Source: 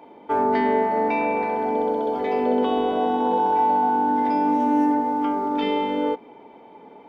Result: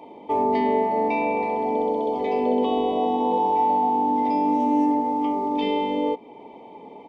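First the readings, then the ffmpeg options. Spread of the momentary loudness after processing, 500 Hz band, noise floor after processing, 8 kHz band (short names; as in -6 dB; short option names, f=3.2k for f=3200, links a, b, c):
4 LU, -0.5 dB, -44 dBFS, n/a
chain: -filter_complex "[0:a]asplit=2[a][b];[b]acompressor=threshold=-36dB:ratio=6,volume=-2.5dB[c];[a][c]amix=inputs=2:normalize=0,aresample=22050,aresample=44100,asuperstop=centerf=1500:order=4:qfactor=1.6,volume=-1.5dB"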